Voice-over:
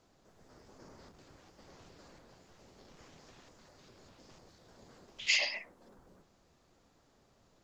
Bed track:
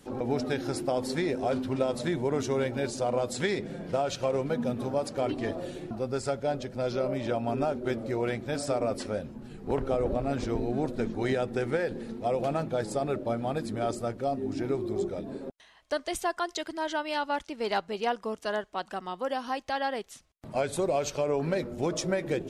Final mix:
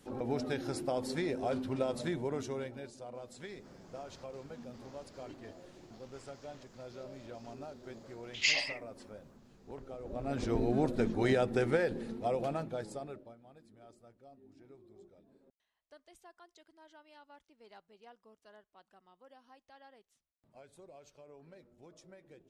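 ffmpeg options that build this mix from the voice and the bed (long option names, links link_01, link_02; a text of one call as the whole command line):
ffmpeg -i stem1.wav -i stem2.wav -filter_complex "[0:a]adelay=3150,volume=0dB[link_01];[1:a]volume=12dB,afade=type=out:start_time=2.05:duration=0.87:silence=0.237137,afade=type=in:start_time=10.04:duration=0.59:silence=0.133352,afade=type=out:start_time=11.64:duration=1.71:silence=0.0446684[link_02];[link_01][link_02]amix=inputs=2:normalize=0" out.wav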